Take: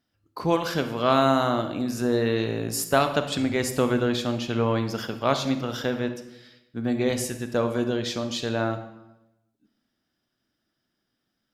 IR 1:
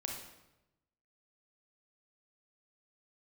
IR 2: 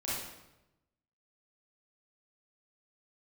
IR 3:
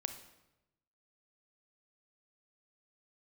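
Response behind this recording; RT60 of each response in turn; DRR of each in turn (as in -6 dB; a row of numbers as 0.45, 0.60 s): 3; 0.95, 0.95, 0.95 s; 0.0, -9.5, 7.5 dB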